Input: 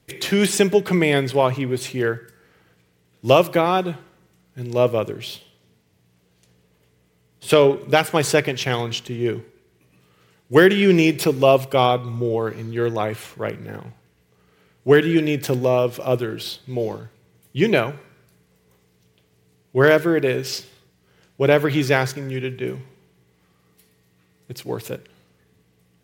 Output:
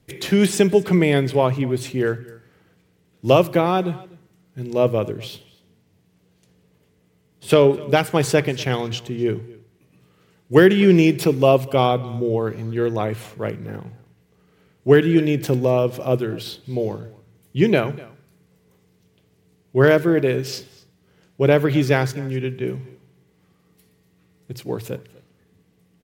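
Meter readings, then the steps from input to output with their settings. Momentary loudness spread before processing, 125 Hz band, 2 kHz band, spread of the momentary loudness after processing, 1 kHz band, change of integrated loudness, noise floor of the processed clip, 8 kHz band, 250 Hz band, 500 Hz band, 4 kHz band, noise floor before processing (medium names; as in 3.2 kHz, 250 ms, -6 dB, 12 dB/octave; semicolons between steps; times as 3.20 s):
17 LU, +3.0 dB, -2.5 dB, 16 LU, -1.5 dB, +0.5 dB, -62 dBFS, -3.0 dB, +2.0 dB, +0.5 dB, -3.0 dB, -62 dBFS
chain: bass shelf 410 Hz +7.5 dB; hum notches 60/120 Hz; on a send: delay 246 ms -22 dB; on the sum: trim -3 dB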